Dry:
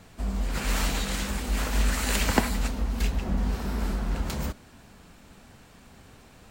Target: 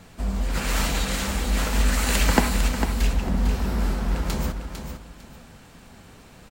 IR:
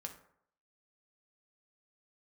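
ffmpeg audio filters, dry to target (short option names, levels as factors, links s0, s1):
-filter_complex "[0:a]aecho=1:1:451|902|1353:0.398|0.0916|0.0211,asplit=2[s0][s1];[1:a]atrim=start_sample=2205,asetrate=43218,aresample=44100[s2];[s1][s2]afir=irnorm=-1:irlink=0,volume=0.75[s3];[s0][s3]amix=inputs=2:normalize=0"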